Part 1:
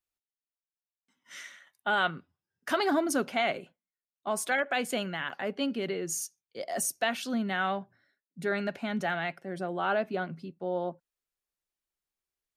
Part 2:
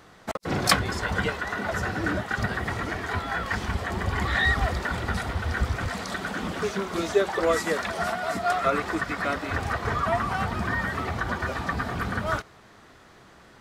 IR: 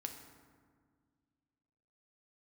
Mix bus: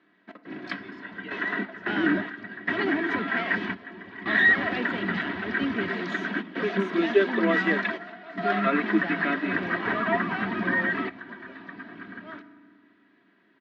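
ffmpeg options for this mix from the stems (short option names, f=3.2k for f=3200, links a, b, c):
-filter_complex "[0:a]asoftclip=type=hard:threshold=-25.5dB,tremolo=f=2.1:d=0.36,volume=1dB,asplit=2[a][b];[1:a]equalizer=f=1.7k:t=o:w=0.35:g=6.5,aecho=1:1:3.1:0.55,volume=0dB,asplit=2[c][d];[d]volume=-16dB[e];[b]apad=whole_len=600094[f];[c][f]sidechaingate=range=-18dB:threshold=-55dB:ratio=16:detection=peak[g];[2:a]atrim=start_sample=2205[h];[e][h]afir=irnorm=-1:irlink=0[i];[a][g][i]amix=inputs=3:normalize=0,highpass=f=170:w=0.5412,highpass=f=170:w=1.3066,equalizer=f=190:t=q:w=4:g=8,equalizer=f=310:t=q:w=4:g=3,equalizer=f=590:t=q:w=4:g=-8,equalizer=f=840:t=q:w=4:g=-7,equalizer=f=1.3k:t=q:w=4:g=-6,lowpass=f=3.3k:w=0.5412,lowpass=f=3.3k:w=1.3066"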